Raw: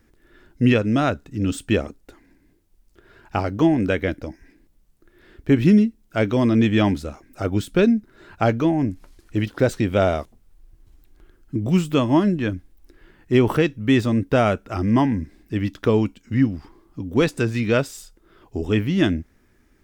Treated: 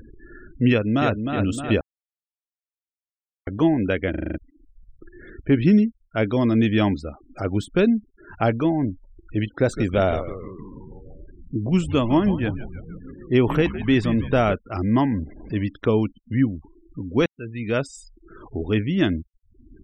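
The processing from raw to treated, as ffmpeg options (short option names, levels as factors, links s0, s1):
-filter_complex "[0:a]asplit=2[s0][s1];[s1]afade=t=in:st=0.7:d=0.01,afade=t=out:st=1.26:d=0.01,aecho=0:1:310|620|930|1240|1550|1860|2170|2480:0.501187|0.300712|0.180427|0.108256|0.0649539|0.0389723|0.0233834|0.01403[s2];[s0][s2]amix=inputs=2:normalize=0,asettb=1/sr,asplit=3[s3][s4][s5];[s3]atrim=end=9.544[s6];[s4]atrim=start=9.54:end=14.54,asetpts=PTS-STARTPTS,afade=t=in:d=0.004:c=qsin,afade=t=out:st=4.996:d=0.004:c=qsin,asplit=8[s7][s8][s9][s10][s11][s12][s13][s14];[s8]adelay=158,afreqshift=-94,volume=0.251[s15];[s9]adelay=316,afreqshift=-188,volume=0.155[s16];[s10]adelay=474,afreqshift=-282,volume=0.0966[s17];[s11]adelay=632,afreqshift=-376,volume=0.0596[s18];[s12]adelay=790,afreqshift=-470,volume=0.0372[s19];[s13]adelay=948,afreqshift=-564,volume=0.0229[s20];[s14]adelay=1106,afreqshift=-658,volume=0.0143[s21];[s7][s15][s16][s17][s18][s19][s20][s21]amix=inputs=8:normalize=0,atrim=end_sample=220500[s22];[s5]atrim=start=14.536[s23];[s6][s22]acrossfade=d=0.004:c1=hsin:c2=qsin[s24];[s24][s23]acrossfade=d=0.004:c1=qsin:c2=hsin,asettb=1/sr,asplit=3[s25][s26][s27];[s25]atrim=end=15.134[s28];[s26]atrim=start=15.13:end=15.64,asetpts=PTS-STARTPTS,afade=t=in:d=0.004:c=qsin,afade=t=out:st=0.506:d=0.004:c=qsin,aeval=exprs='val(0)+0.5*0.0168*sgn(val(0))':c=same[s29];[s27]atrim=start=15.636[s30];[s28][s29]acrossfade=d=0.004:c1=hsin:c2=qsin[s31];[s31][s30]acrossfade=d=0.004:c1=qsin:c2=hsin,asplit=11[s32][s33][s34][s35][s36][s37][s38][s39][s40][s41][s42];[s32]atrim=end=1.81,asetpts=PTS-STARTPTS,afade=t=out:st=1.806:d=0.004:c=hsin[s43];[s33]atrim=start=1.81:end=3.47,asetpts=PTS-STARTPTS,volume=0[s44];[s34]atrim=start=3.47:end=4.142,asetpts=PTS-STARTPTS,afade=t=in:d=0.004:c=hsin[s45];[s35]atrim=start=4.098:end=4.142[s46];[s36]atrim=start=4.098:end=4.142[s47];[s37]atrim=start=4.098:end=4.142[s48];[s38]atrim=start=4.098:end=4.142[s49];[s39]atrim=start=4.098:end=4.142[s50];[s40]atrim=start=4.098:end=4.142[s51];[s41]atrim=start=4.378:end=17.26,asetpts=PTS-STARTPTS,afade=t=out:st=12.878:d=0.004:c=hsin[s52];[s42]atrim=start=17.26,asetpts=PTS-STARTPTS,afade=t=in:d=0.65[s53];[s43][s44][s45]concat=n=3:v=0:a=1[s54];[s54][s46]acrossfade=d=0.004:c1=hsin:c2=hsin[s55];[s55][s47]acrossfade=d=0.004:c1=hsin:c2=hsin[s56];[s56][s48]acrossfade=d=0.004:c1=hsin:c2=hsin[s57];[s57][s49]acrossfade=d=0.004:c1=hsin:c2=hsin[s58];[s58][s50]acrossfade=d=0.004:c1=hsin:c2=hsin[s59];[s59][s51]acrossfade=d=0.004:c1=hsin:c2=hsin[s60];[s52][s53]concat=n=2:v=0:a=1[s61];[s60][s61]acrossfade=d=0.004:c1=hsin:c2=hsin,acompressor=mode=upward:threshold=0.0355:ratio=2.5,afftfilt=real='re*gte(hypot(re,im),0.0141)':imag='im*gte(hypot(re,im),0.0141)':win_size=1024:overlap=0.75,volume=0.841"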